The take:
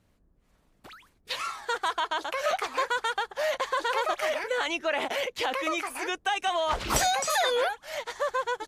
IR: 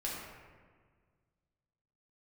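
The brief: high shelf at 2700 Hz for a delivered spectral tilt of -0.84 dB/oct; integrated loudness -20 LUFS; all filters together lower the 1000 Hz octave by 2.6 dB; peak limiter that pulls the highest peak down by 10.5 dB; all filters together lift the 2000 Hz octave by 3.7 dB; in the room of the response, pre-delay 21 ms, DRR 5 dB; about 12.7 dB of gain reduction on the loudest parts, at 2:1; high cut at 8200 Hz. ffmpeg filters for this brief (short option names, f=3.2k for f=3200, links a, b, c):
-filter_complex "[0:a]lowpass=8.2k,equalizer=f=1k:t=o:g=-5.5,equalizer=f=2k:t=o:g=3.5,highshelf=f=2.7k:g=7.5,acompressor=threshold=-43dB:ratio=2,alimiter=level_in=4.5dB:limit=-24dB:level=0:latency=1,volume=-4.5dB,asplit=2[a][b];[1:a]atrim=start_sample=2205,adelay=21[c];[b][c]afir=irnorm=-1:irlink=0,volume=-8dB[d];[a][d]amix=inputs=2:normalize=0,volume=17.5dB"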